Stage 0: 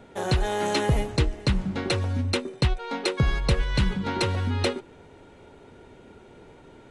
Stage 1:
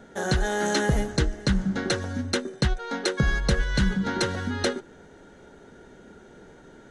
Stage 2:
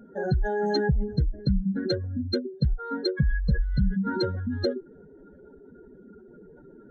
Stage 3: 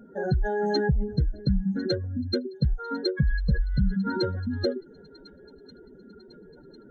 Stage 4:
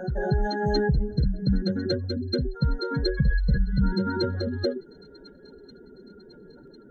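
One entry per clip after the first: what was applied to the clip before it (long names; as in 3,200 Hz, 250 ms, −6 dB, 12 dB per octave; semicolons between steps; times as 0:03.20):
thirty-one-band graphic EQ 100 Hz −11 dB, 200 Hz +5 dB, 1,000 Hz −5 dB, 1,600 Hz +9 dB, 2,500 Hz −9 dB, 6,300 Hz +8 dB
expanding power law on the bin magnitudes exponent 2.6
delay with a high-pass on its return 1,050 ms, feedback 55%, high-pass 2,300 Hz, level −18.5 dB
backwards echo 235 ms −5.5 dB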